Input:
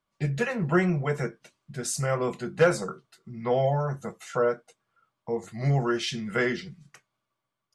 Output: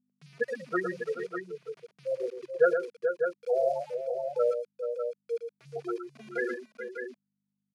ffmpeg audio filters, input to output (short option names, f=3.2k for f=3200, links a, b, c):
-filter_complex "[0:a]afftfilt=real='re*gte(hypot(re,im),0.282)':imag='im*gte(hypot(re,im),0.282)':win_size=1024:overlap=0.75,aeval=exprs='val(0)*gte(abs(val(0)),0.00501)':c=same,aeval=exprs='val(0)+0.00224*(sin(2*PI*50*n/s)+sin(2*PI*2*50*n/s)/2+sin(2*PI*3*50*n/s)/3+sin(2*PI*4*50*n/s)/4+sin(2*PI*5*50*n/s)/5)':c=same,highpass=f=320:w=0.5412,highpass=f=320:w=1.3066,equalizer=f=340:t=q:w=4:g=-6,equalizer=f=870:t=q:w=4:g=-5,equalizer=f=2.4k:t=q:w=4:g=7,equalizer=f=4.7k:t=q:w=4:g=4,equalizer=f=7.8k:t=q:w=4:g=-7,lowpass=f=9.8k:w=0.5412,lowpass=f=9.8k:w=1.3066,asplit=2[a][b];[b]aecho=0:1:114|430|432|598:0.422|0.211|0.251|0.447[c];[a][c]amix=inputs=2:normalize=0,adynamicequalizer=threshold=0.00631:dfrequency=5100:dqfactor=0.7:tfrequency=5100:tqfactor=0.7:attack=5:release=100:ratio=0.375:range=2.5:mode=boostabove:tftype=highshelf"